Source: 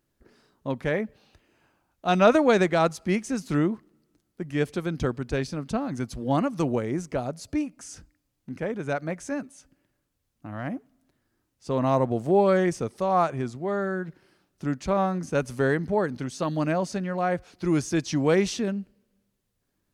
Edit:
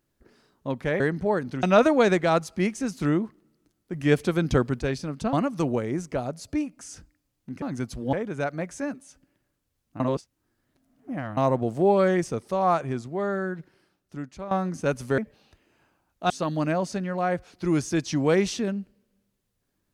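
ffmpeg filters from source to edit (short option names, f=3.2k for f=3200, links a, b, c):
-filter_complex "[0:a]asplit=13[a][b][c][d][e][f][g][h][i][j][k][l][m];[a]atrim=end=1.002[n];[b]atrim=start=15.668:end=16.302[o];[c]atrim=start=2.118:end=4.432[p];[d]atrim=start=4.428:end=5.282,asetpts=PTS-STARTPTS,volume=5dB[q];[e]atrim=start=5.278:end=5.822[r];[f]atrim=start=6.328:end=8.622[s];[g]atrim=start=5.818:end=6.332[t];[h]atrim=start=8.618:end=10.492[u];[i]atrim=start=10.488:end=11.862,asetpts=PTS-STARTPTS,areverse[v];[j]atrim=start=11.858:end=15,asetpts=PTS-STARTPTS,afade=t=out:st=2.072:d=1.07:silence=0.199526[w];[k]atrim=start=15:end=15.672,asetpts=PTS-STARTPTS,afade=t=in:d=0.004:c=hsin:silence=0.199526[x];[l]atrim=start=0.998:end=2.122[y];[m]atrim=start=16.298[z];[n][o]acrossfade=d=0.004:c1=hsin:c2=hsin[aa];[aa][p]acrossfade=d=0.004:c1=hsin:c2=hsin[ab];[ab][q]acrossfade=d=0.004:c1=hsin:c2=hsin[ac];[ac][r]acrossfade=d=0.004:c1=hsin:c2=hsin[ad];[ad][s]acrossfade=d=0.004:c1=hsin:c2=hsin[ae];[ae][t]acrossfade=d=0.004:c1=hsin:c2=hsin[af];[af][u]acrossfade=d=0.004:c1=hsin:c2=hsin[ag];[ag][v]acrossfade=d=0.004:c1=hsin:c2=hsin[ah];[w][x]concat=n=2:v=0:a=1[ai];[ah][ai]acrossfade=d=0.004:c1=hsin:c2=hsin[aj];[aj][y]acrossfade=d=0.004:c1=hsin:c2=hsin[ak];[ak][z]acrossfade=d=0.004:c1=hsin:c2=hsin"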